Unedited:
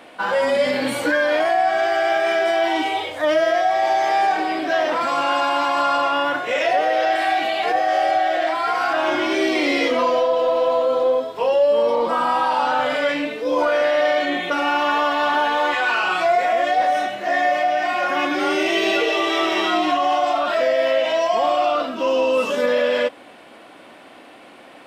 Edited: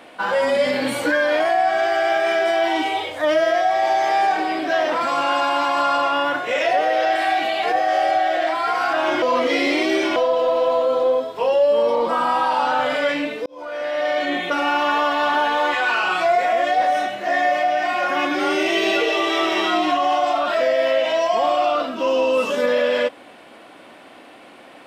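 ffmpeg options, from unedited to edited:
-filter_complex "[0:a]asplit=4[a][b][c][d];[a]atrim=end=9.222[e];[b]atrim=start=9.218:end=10.162,asetpts=PTS-STARTPTS,areverse[f];[c]atrim=start=10.158:end=13.46,asetpts=PTS-STARTPTS,afade=t=out:st=3.298:d=0.004:c=hsin[g];[d]atrim=start=13.46,asetpts=PTS-STARTPTS,afade=t=in:d=0.89[h];[e][f]acrossfade=d=0.004:c1=hsin:c2=hsin[i];[g][h]concat=n=2:v=0:a=1[j];[i][j]acrossfade=d=0.004:c1=hsin:c2=hsin"

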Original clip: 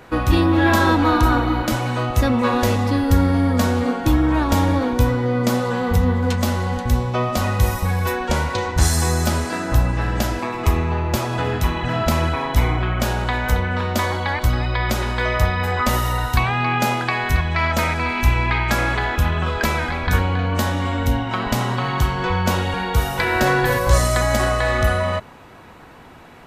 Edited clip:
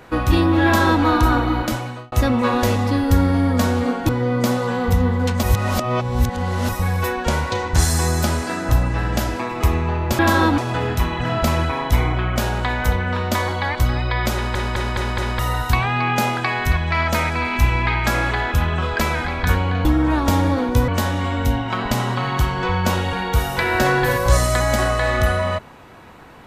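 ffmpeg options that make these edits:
-filter_complex "[0:a]asplit=14[a][b][c][d][e][f][g][h][i][j][k][l][m][n];[a]atrim=end=2.12,asetpts=PTS-STARTPTS,afade=t=out:st=1.62:d=0.5[o];[b]atrim=start=2.12:end=4.092,asetpts=PTS-STARTPTS,afade=t=in:d=0.004:c=hsin[p];[c]atrim=start=5.118:end=6.462[q];[d]atrim=start=6.458:end=7.722,asetpts=PTS-STARTPTS,areverse[r];[e]atrim=start=7.718:end=11.222[s];[f]atrim=start=0.648:end=1.042[t];[g]atrim=start=11.218:end=15.192[u];[h]atrim=start=14.978:end=15.192[v];[i]atrim=start=14.978:end=15.192[w];[j]atrim=start=14.978:end=15.192[x];[k]atrim=start=14.978:end=15.192[y];[l]atrim=start=16.028:end=20.492[z];[m]atrim=start=4.088:end=5.122[aa];[n]atrim=start=20.488[ab];[o][p]concat=n=2:v=0:a=1[ac];[ac][q]acrossfade=d=0.004:c1=hsin:c2=hsin[ad];[ad][r]acrossfade=d=0.004:c1=hsin:c2=hsin[ae];[ae][s]acrossfade=d=0.004:c1=hsin:c2=hsin[af];[af][t]acrossfade=d=0.004:c1=hsin:c2=hsin[ag];[ag][u]acrossfade=d=0.004:c1=hsin:c2=hsin[ah];[ah][v]acrossfade=d=0.004:c1=hsin:c2=hsin[ai];[ai][w]acrossfade=d=0.004:c1=hsin:c2=hsin[aj];[aj][x]acrossfade=d=0.004:c1=hsin:c2=hsin[ak];[ak][y]acrossfade=d=0.004:c1=hsin:c2=hsin[al];[al][z]acrossfade=d=0.004:c1=hsin:c2=hsin[am];[am][aa]acrossfade=d=0.004:c1=hsin:c2=hsin[an];[an][ab]acrossfade=d=0.004:c1=hsin:c2=hsin"

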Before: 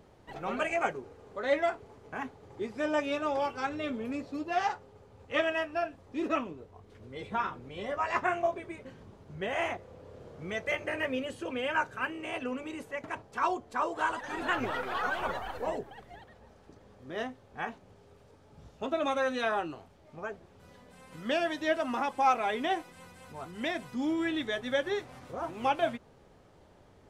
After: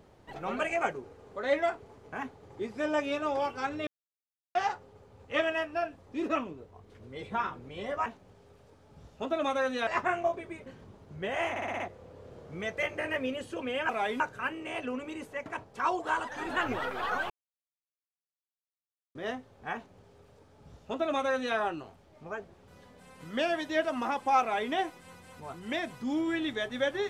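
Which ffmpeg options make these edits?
-filter_complex "[0:a]asplit=15[a][b][c][d][e][f][g][h][i][j][k][l][m][n][o];[a]atrim=end=3.87,asetpts=PTS-STARTPTS,afade=t=out:st=3.866:d=0.004:c=hsin[p];[b]atrim=start=3.87:end=4.55,asetpts=PTS-STARTPTS,volume=0[q];[c]atrim=start=4.55:end=8.062,asetpts=PTS-STARTPTS,afade=t=in:d=0.004:c=hsin[r];[d]atrim=start=17.668:end=19.482[s];[e]atrim=start=8.058:end=9.752[t];[f]atrim=start=9.688:end=9.752[u];[g]atrim=start=9.688:end=9.752[v];[h]atrim=start=9.688:end=9.752[w];[i]atrim=start=9.688:end=9.752[x];[j]atrim=start=9.688:end=11.782[y];[k]atrim=start=22.328:end=22.642[z];[l]atrim=start=11.778:end=13.572[aa];[m]atrim=start=13.908:end=15.22,asetpts=PTS-STARTPTS,afade=t=out:st=1.308:d=0.004:c=hsin[ab];[n]atrim=start=15.22:end=17.07,asetpts=PTS-STARTPTS,volume=0[ac];[o]atrim=start=17.07,asetpts=PTS-STARTPTS,afade=t=in:d=0.004:c=hsin[ad];[p][q][r]concat=n=3:v=0:a=1[ae];[ae][s]acrossfade=d=0.004:c1=hsin:c2=hsin[af];[af][t]acrossfade=d=0.004:c1=hsin:c2=hsin[ag];[ag][u]acrossfade=d=0.004:c1=hsin:c2=hsin[ah];[ah][v]acrossfade=d=0.004:c1=hsin:c2=hsin[ai];[ai][w]acrossfade=d=0.004:c1=hsin:c2=hsin[aj];[aj][x]acrossfade=d=0.004:c1=hsin:c2=hsin[ak];[ak][y]acrossfade=d=0.004:c1=hsin:c2=hsin[al];[al][z]acrossfade=d=0.004:c1=hsin:c2=hsin[am];[am][aa]acrossfade=d=0.004:c1=hsin:c2=hsin[an];[ab][ac][ad]concat=n=3:v=0:a=1[ao];[an][ao]acrossfade=d=0.004:c1=hsin:c2=hsin"

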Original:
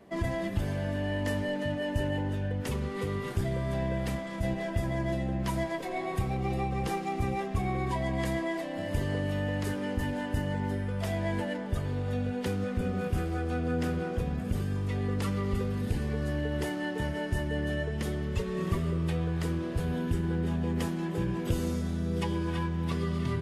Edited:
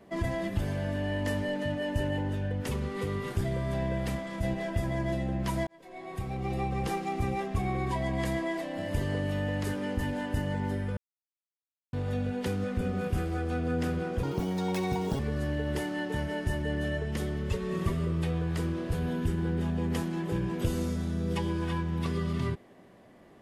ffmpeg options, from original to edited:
-filter_complex "[0:a]asplit=6[a][b][c][d][e][f];[a]atrim=end=5.67,asetpts=PTS-STARTPTS,afade=t=out:st=5.666:d=0.004:c=hsin[g];[b]atrim=start=5.67:end=10.97,asetpts=PTS-STARTPTS,afade=t=in:d=0.99,afade=t=out:st=5.296:d=0.004:c=hsin[h];[c]atrim=start=10.97:end=11.93,asetpts=PTS-STARTPTS,volume=0[i];[d]atrim=start=11.93:end=14.234,asetpts=PTS-STARTPTS,afade=t=in:d=0.004:c=hsin[j];[e]atrim=start=14.23:end=16.05,asetpts=PTS-STARTPTS,asetrate=83349,aresample=44100[k];[f]atrim=start=16.046[l];[g][h][i][j]concat=n=4:v=0:a=1[m];[m][k]acrossfade=d=0.004:c1=hsin:c2=hsin[n];[n][l]acrossfade=d=0.004:c1=hsin:c2=hsin"

